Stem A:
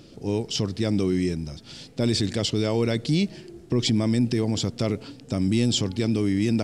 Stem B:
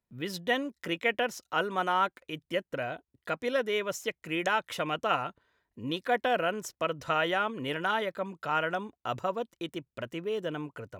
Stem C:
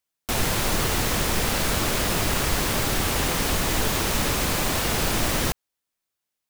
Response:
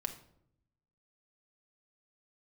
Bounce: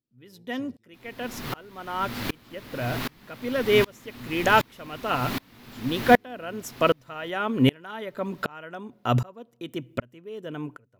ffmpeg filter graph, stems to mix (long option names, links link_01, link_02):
-filter_complex "[0:a]alimiter=limit=-20.5dB:level=0:latency=1:release=206,volume=-18dB[link_01];[1:a]volume=1.5dB,asplit=2[link_02][link_03];[link_03]volume=-17.5dB[link_04];[2:a]equalizer=frequency=250:width_type=o:width=1:gain=5,equalizer=frequency=1000:width_type=o:width=1:gain=5,equalizer=frequency=2000:width_type=o:width=1:gain=6,equalizer=frequency=4000:width_type=o:width=1:gain=7,equalizer=frequency=8000:width_type=o:width=1:gain=-7,adelay=650,volume=-19.5dB,asplit=2[link_05][link_06];[link_06]volume=-10.5dB[link_07];[3:a]atrim=start_sample=2205[link_08];[link_04][link_08]afir=irnorm=-1:irlink=0[link_09];[link_07]aecho=0:1:1131|2262|3393:1|0.19|0.0361[link_10];[link_01][link_02][link_05][link_09][link_10]amix=inputs=5:normalize=0,equalizer=frequency=125:width_type=o:width=0.33:gain=11,equalizer=frequency=250:width_type=o:width=0.33:gain=10,equalizer=frequency=400:width_type=o:width=0.33:gain=3,equalizer=frequency=12500:width_type=o:width=0.33:gain=7,dynaudnorm=framelen=390:gausssize=7:maxgain=11.5dB,aeval=exprs='val(0)*pow(10,-31*if(lt(mod(-1.3*n/s,1),2*abs(-1.3)/1000),1-mod(-1.3*n/s,1)/(2*abs(-1.3)/1000),(mod(-1.3*n/s,1)-2*abs(-1.3)/1000)/(1-2*abs(-1.3)/1000))/20)':channel_layout=same"